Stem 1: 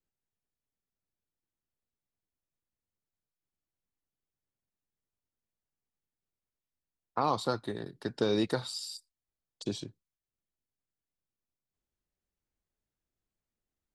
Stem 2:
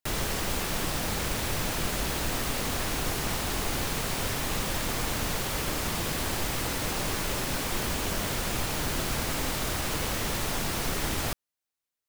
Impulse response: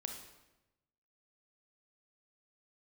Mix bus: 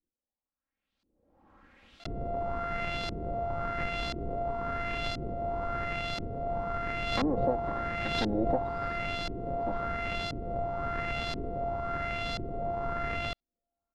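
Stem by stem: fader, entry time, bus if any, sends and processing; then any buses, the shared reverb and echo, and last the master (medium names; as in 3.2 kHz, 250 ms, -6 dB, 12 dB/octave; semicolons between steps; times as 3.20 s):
-2.0 dB, 0.00 s, no send, comb filter that takes the minimum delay 3.7 ms
-5.0 dB, 2.00 s, no send, sorted samples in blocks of 64 samples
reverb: none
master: LFO low-pass saw up 0.97 Hz 320–4400 Hz; swell ahead of each attack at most 42 dB/s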